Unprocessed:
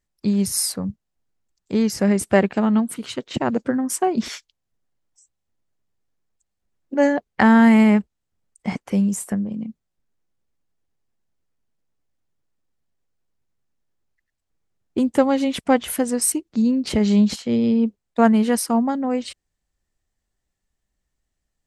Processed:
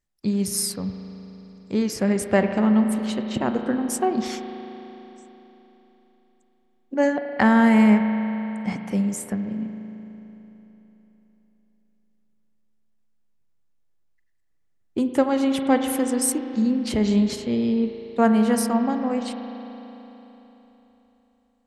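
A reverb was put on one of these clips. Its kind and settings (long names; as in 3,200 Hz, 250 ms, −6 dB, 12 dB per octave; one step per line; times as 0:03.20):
spring reverb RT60 3.7 s, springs 37 ms, chirp 20 ms, DRR 6 dB
level −3 dB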